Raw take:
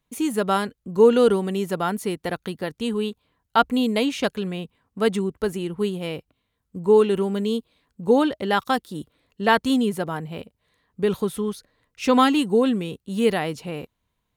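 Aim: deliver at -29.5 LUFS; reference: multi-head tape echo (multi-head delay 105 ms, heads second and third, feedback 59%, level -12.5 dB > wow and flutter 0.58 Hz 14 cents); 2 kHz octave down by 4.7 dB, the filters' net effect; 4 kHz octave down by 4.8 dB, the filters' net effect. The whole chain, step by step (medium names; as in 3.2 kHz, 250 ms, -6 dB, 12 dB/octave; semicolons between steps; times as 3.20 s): peaking EQ 2 kHz -5.5 dB; peaking EQ 4 kHz -4 dB; multi-head delay 105 ms, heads second and third, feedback 59%, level -12.5 dB; wow and flutter 0.58 Hz 14 cents; trim -6.5 dB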